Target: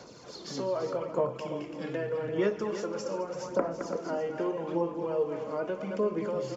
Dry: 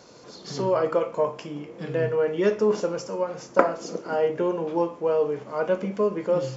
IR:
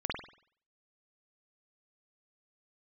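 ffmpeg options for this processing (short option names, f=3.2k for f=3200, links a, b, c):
-filter_complex "[0:a]asplit=2[a][b];[b]adelay=215.7,volume=-10dB,highshelf=f=4k:g=-4.85[c];[a][c]amix=inputs=2:normalize=0,acrossover=split=240|660[d][e][f];[d]acompressor=threshold=-40dB:ratio=4[g];[e]acompressor=threshold=-32dB:ratio=4[h];[f]acompressor=threshold=-38dB:ratio=4[i];[g][h][i]amix=inputs=3:normalize=0,aphaser=in_gain=1:out_gain=1:delay=3.7:decay=0.43:speed=0.82:type=sinusoidal,asplit=2[j][k];[k]aecho=0:1:336:0.299[l];[j][l]amix=inputs=2:normalize=0,volume=-2dB"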